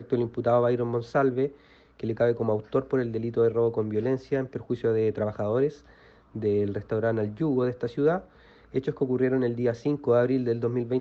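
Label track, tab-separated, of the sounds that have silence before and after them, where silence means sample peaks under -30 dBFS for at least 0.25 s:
2.030000	5.690000	sound
6.360000	8.190000	sound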